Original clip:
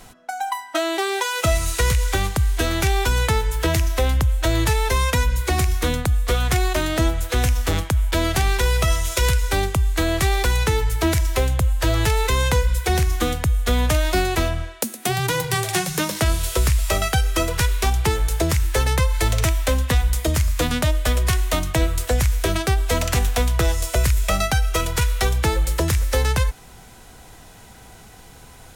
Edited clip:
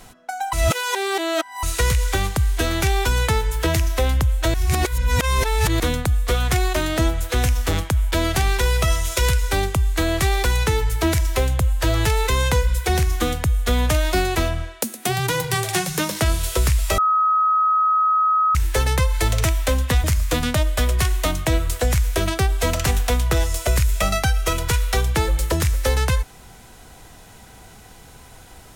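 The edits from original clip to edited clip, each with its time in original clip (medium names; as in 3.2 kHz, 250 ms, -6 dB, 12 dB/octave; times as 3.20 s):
0.53–1.63 s: reverse
4.54–5.80 s: reverse
16.98–18.55 s: bleep 1.27 kHz -14.5 dBFS
20.04–20.32 s: delete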